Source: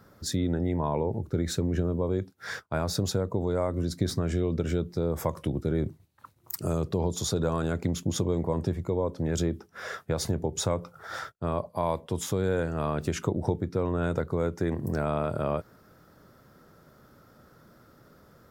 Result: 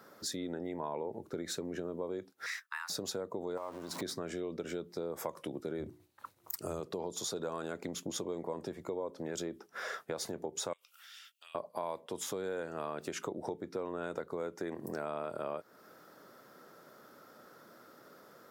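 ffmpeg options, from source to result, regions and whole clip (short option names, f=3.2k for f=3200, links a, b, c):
-filter_complex "[0:a]asettb=1/sr,asplit=3[a][b][c];[a]atrim=end=2.464[d];[b]atrim=start=2.46:end=2.9,asetpts=PTS-STARTPTS,afade=t=in:d=0.004:c=qsin,afade=t=out:st=0.436:d=0.004:c=qsin,highpass=f=960:w=0.5412,highpass=f=960:w=1.3066,highshelf=f=12k:g=5.5,afreqshift=290[e];[c]atrim=start=2.896[f];[d][e]acrossfade=d=0.004:c1=hsin:c2=qsin[g];[g][f]acrossfade=d=0.004:c1=qsin:c2=hsin,asettb=1/sr,asplit=3[h][i][j];[h]atrim=end=3.574[k];[i]atrim=start=3.57:end=4.02,asetpts=PTS-STARTPTS,afade=t=in:d=0.004:c=qsin,afade=t=out:st=0.446:d=0.004:c=qsin,aeval=exprs='val(0)+0.5*0.0178*sgn(val(0))':c=same,acompressor=threshold=-32dB:ratio=12:attack=3.2:release=140:knee=1:detection=peak,equalizer=f=990:w=2.3:g=12[l];[j]atrim=start=4.016[m];[k][l]acrossfade=d=0.004:c1=hsin:c2=qsin[n];[n][m]acrossfade=d=0.004:c1=qsin:c2=hsin,asettb=1/sr,asplit=3[o][p][q];[o]atrim=end=5.784[r];[p]atrim=start=5.78:end=6.8,asetpts=PTS-STARTPTS,afade=t=in:d=0.004:c=qsin,afade=t=out:st=1.016:d=0.004:c=qsin,equalizer=f=84:t=o:w=0.76:g=13.5,bandreject=f=60:t=h:w=6,bandreject=f=120:t=h:w=6,bandreject=f=180:t=h:w=6,bandreject=f=240:t=h:w=6,bandreject=f=300:t=h:w=6,bandreject=f=360:t=h:w=6[s];[q]atrim=start=6.796[t];[r][s]acrossfade=d=0.004:c1=hsin:c2=qsin[u];[u][t]acrossfade=d=0.004:c1=qsin:c2=hsin,asettb=1/sr,asplit=3[v][w][x];[v]atrim=end=10.734[y];[w]atrim=start=10.73:end=11.55,asetpts=PTS-STARTPTS,afade=t=in:d=0.004:c=qsin,afade=t=out:st=0.816:d=0.004:c=qsin,highpass=f=2.8k:t=q:w=7.4,highshelf=f=6.7k:g=11,acompressor=threshold=-56dB:ratio=4:attack=3.2:release=140:knee=1:detection=peak[z];[x]atrim=start=11.546[aa];[y][z]acrossfade=d=0.004:c1=hsin:c2=qsin[ab];[ab][aa]acrossfade=d=0.004:c1=qsin:c2=hsin,highpass=320,acompressor=threshold=-41dB:ratio=2.5,volume=2dB"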